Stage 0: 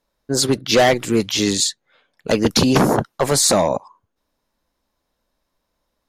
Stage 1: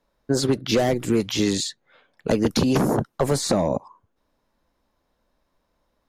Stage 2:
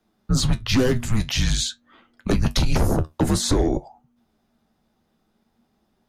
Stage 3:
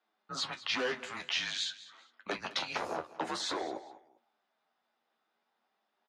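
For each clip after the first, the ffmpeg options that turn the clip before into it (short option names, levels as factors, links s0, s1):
-filter_complex "[0:a]highshelf=f=3300:g=-9,acrossover=split=460|6500[s0][s1][s2];[s0]acompressor=threshold=0.0708:ratio=4[s3];[s1]acompressor=threshold=0.0282:ratio=4[s4];[s2]acompressor=threshold=0.0126:ratio=4[s5];[s3][s4][s5]amix=inputs=3:normalize=0,volume=1.5"
-af "flanger=delay=8.4:depth=4.6:regen=62:speed=0.48:shape=triangular,afreqshift=-240,aeval=exprs='0.299*sin(PI/2*1.41*val(0)/0.299)':c=same"
-af "flanger=delay=9.1:depth=3.7:regen=-36:speed=0.49:shape=triangular,highpass=780,lowpass=3500,aecho=1:1:200|400:0.133|0.0347"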